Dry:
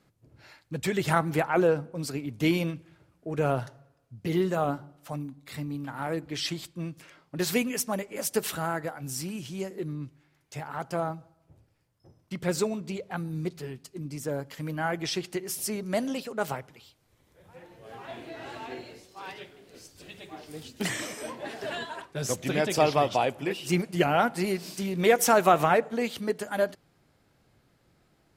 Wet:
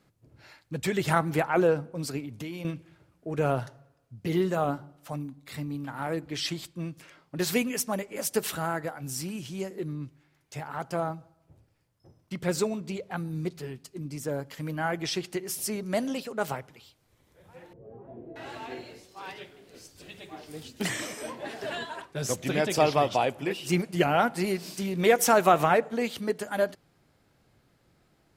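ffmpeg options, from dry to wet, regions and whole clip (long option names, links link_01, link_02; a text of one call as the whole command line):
ffmpeg -i in.wav -filter_complex "[0:a]asettb=1/sr,asplit=3[link_01][link_02][link_03];[link_01]atrim=end=2.204[link_04];[link_02]atrim=start=2.2:end=2.65,asetpts=PTS-STARTPTS,afade=type=in:duration=0.004:curve=qsin,afade=type=out:start_time=0.446:duration=0.004:curve=qsin,acompressor=threshold=-34dB:ratio=6:attack=3.2:release=140:knee=1:detection=peak,highpass=46[link_05];[link_03]atrim=start=2.646[link_06];[link_04][link_05]acrossfade=duration=0.004:curve1=hsin:curve2=qsin[link_07];[link_07][link_06]acrossfade=duration=0.004:curve1=qsin:curve2=hsin,asettb=1/sr,asplit=3[link_08][link_09][link_10];[link_08]atrim=end=17.734[link_11];[link_09]atrim=start=17.73:end=18.36,asetpts=PTS-STARTPTS,afade=type=in:duration=0.004:curve=qsin,afade=type=out:start_time=0.626:duration=0.004:curve=qsin,aeval=exprs='val(0)+0.5*0.00141*sgn(val(0))':channel_layout=same,lowpass=frequency=380:width_type=q:width=1.6,equalizer=frequency=300:width=3.1:gain=-8[link_12];[link_10]atrim=start=18.356[link_13];[link_11][link_12]acrossfade=duration=0.004:curve1=hsin:curve2=qsin[link_14];[link_14][link_13]acrossfade=duration=0.004:curve1=qsin:curve2=hsin" out.wav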